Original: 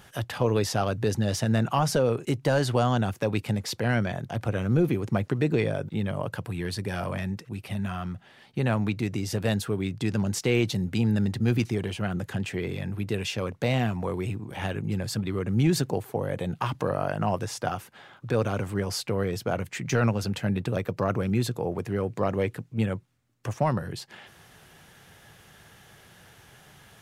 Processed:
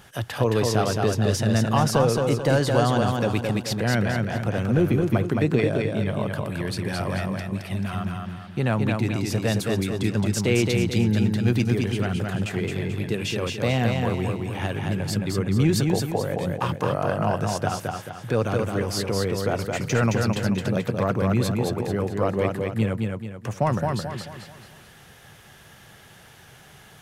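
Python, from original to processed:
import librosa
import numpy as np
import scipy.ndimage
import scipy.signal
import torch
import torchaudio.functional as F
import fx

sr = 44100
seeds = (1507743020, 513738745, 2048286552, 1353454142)

y = fx.echo_feedback(x, sr, ms=218, feedback_pct=41, wet_db=-3.5)
y = y * 10.0 ** (2.0 / 20.0)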